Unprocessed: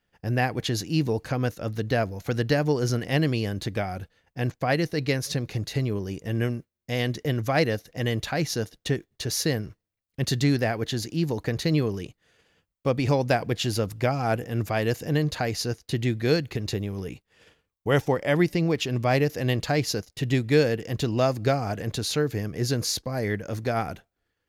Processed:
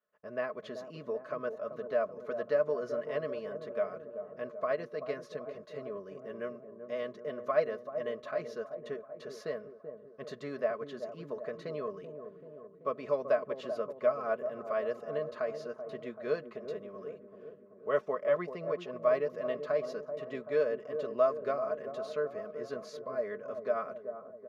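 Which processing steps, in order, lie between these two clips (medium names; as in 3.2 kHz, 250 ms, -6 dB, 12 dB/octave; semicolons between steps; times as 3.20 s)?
two resonant band-passes 820 Hz, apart 0.92 oct; comb 4.7 ms, depth 67%; feedback echo behind a low-pass 384 ms, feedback 61%, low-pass 830 Hz, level -8 dB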